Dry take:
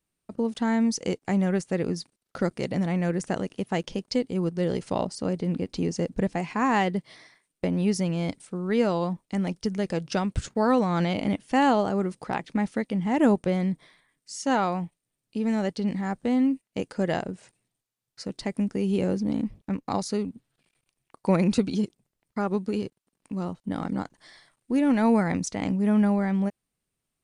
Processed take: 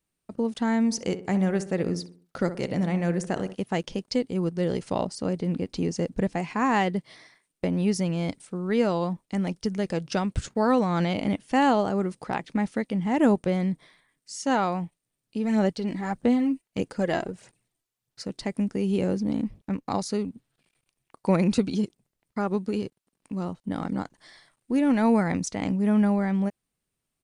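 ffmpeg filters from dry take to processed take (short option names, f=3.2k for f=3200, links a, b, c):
-filter_complex "[0:a]asplit=3[a][b][c];[a]afade=t=out:st=0.9:d=0.02[d];[b]asplit=2[e][f];[f]adelay=63,lowpass=f=1.7k:p=1,volume=-11dB,asplit=2[g][h];[h]adelay=63,lowpass=f=1.7k:p=1,volume=0.45,asplit=2[i][j];[j]adelay=63,lowpass=f=1.7k:p=1,volume=0.45,asplit=2[k][l];[l]adelay=63,lowpass=f=1.7k:p=1,volume=0.45,asplit=2[m][n];[n]adelay=63,lowpass=f=1.7k:p=1,volume=0.45[o];[e][g][i][k][m][o]amix=inputs=6:normalize=0,afade=t=in:st=0.9:d=0.02,afade=t=out:st=3.54:d=0.02[p];[c]afade=t=in:st=3.54:d=0.02[q];[d][p][q]amix=inputs=3:normalize=0,asplit=3[r][s][t];[r]afade=t=out:st=15.45:d=0.02[u];[s]aphaser=in_gain=1:out_gain=1:delay=3.1:decay=0.44:speed=1.6:type=sinusoidal,afade=t=in:st=15.45:d=0.02,afade=t=out:st=18.22:d=0.02[v];[t]afade=t=in:st=18.22:d=0.02[w];[u][v][w]amix=inputs=3:normalize=0"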